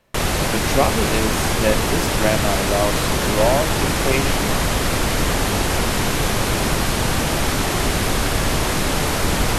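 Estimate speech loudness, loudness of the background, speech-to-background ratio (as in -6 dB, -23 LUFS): -23.5 LUFS, -20.0 LUFS, -3.5 dB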